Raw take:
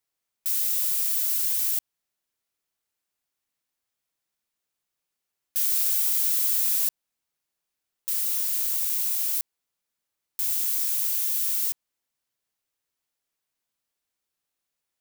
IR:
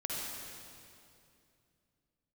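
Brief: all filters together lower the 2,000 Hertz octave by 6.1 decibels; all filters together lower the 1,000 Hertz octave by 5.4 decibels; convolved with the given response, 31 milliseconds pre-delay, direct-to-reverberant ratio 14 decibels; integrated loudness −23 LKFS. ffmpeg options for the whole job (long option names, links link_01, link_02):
-filter_complex "[0:a]equalizer=frequency=1000:width_type=o:gain=-4.5,equalizer=frequency=2000:width_type=o:gain=-7,asplit=2[link_01][link_02];[1:a]atrim=start_sample=2205,adelay=31[link_03];[link_02][link_03]afir=irnorm=-1:irlink=0,volume=-17.5dB[link_04];[link_01][link_04]amix=inputs=2:normalize=0,volume=-0.5dB"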